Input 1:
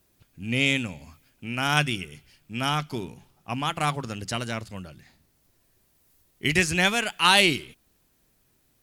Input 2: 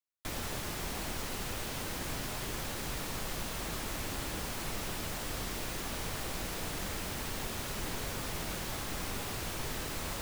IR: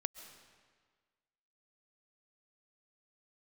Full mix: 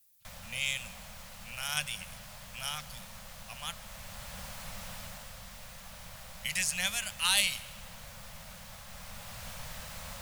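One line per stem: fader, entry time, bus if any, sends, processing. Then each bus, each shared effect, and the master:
−3.0 dB, 0.00 s, muted 0:03.73–0:05.40, send −7 dB, first-order pre-emphasis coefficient 0.9
−8.0 dB, 0.00 s, send −6 dB, automatic ducking −8 dB, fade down 0.40 s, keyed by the first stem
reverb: on, RT60 1.6 s, pre-delay 95 ms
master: Chebyshev band-stop filter 210–530 Hz, order 3

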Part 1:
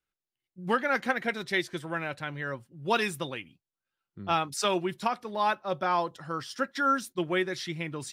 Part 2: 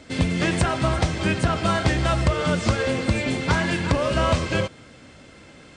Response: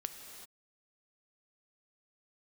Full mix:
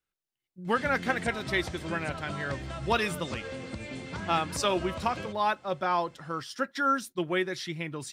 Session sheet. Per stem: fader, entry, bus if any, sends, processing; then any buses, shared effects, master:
−0.5 dB, 0.00 s, no send, no processing
−13.0 dB, 0.65 s, no send, mains-hum notches 50/100 Hz; downward compressor, threshold −21 dBFS, peak gain reduction 6.5 dB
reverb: not used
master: no processing

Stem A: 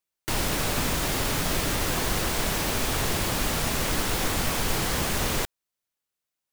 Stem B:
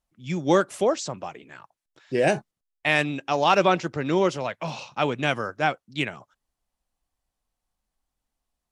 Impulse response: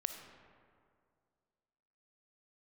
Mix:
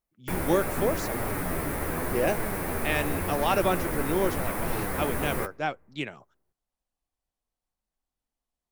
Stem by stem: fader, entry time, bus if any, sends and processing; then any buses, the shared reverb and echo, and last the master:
−1.0 dB, 0.00 s, send −20 dB, flat-topped bell 4,600 Hz −14.5 dB; flanger 0.85 Hz, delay 8.2 ms, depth 6.3 ms, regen +29%
−7.5 dB, 0.00 s, no send, no processing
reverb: on, RT60 2.2 s, pre-delay 15 ms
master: parametric band 400 Hz +3.5 dB 1.6 octaves

